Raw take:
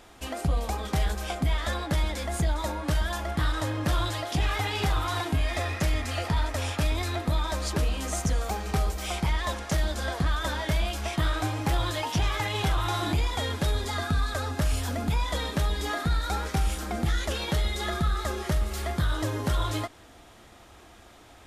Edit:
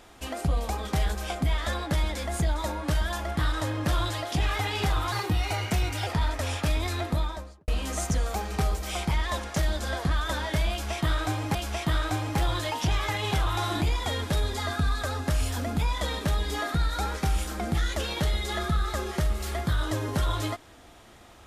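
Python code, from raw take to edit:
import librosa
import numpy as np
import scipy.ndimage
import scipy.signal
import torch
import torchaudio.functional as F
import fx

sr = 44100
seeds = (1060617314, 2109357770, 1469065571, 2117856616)

y = fx.studio_fade_out(x, sr, start_s=7.22, length_s=0.61)
y = fx.edit(y, sr, fx.speed_span(start_s=5.12, length_s=1.1, speed=1.16),
    fx.repeat(start_s=10.86, length_s=0.84, count=2), tone=tone)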